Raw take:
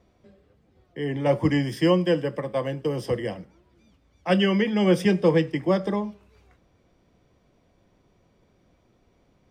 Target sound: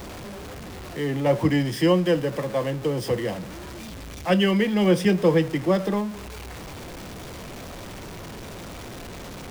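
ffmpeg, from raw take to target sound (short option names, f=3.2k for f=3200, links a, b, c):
-af "aeval=exprs='val(0)+0.5*0.0251*sgn(val(0))':c=same"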